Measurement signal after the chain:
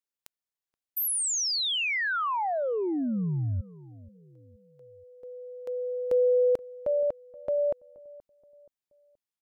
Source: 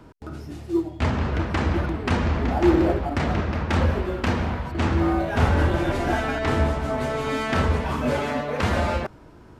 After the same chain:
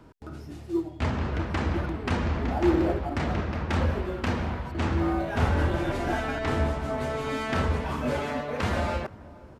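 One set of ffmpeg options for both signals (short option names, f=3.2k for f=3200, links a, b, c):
-filter_complex "[0:a]asplit=2[a][b];[b]adelay=476,lowpass=f=850:p=1,volume=-19.5dB,asplit=2[c][d];[d]adelay=476,lowpass=f=850:p=1,volume=0.45,asplit=2[e][f];[f]adelay=476,lowpass=f=850:p=1,volume=0.45[g];[a][c][e][g]amix=inputs=4:normalize=0,volume=-4.5dB"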